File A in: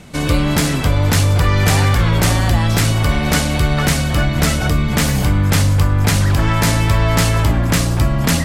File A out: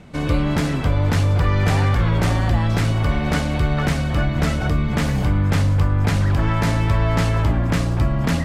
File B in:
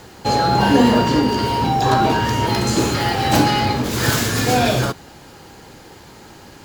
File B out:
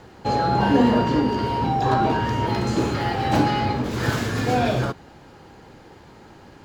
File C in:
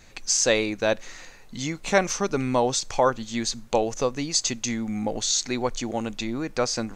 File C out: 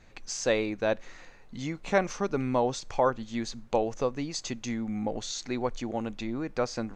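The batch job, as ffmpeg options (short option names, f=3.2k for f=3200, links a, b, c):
-af "lowpass=f=2k:p=1,volume=-3.5dB"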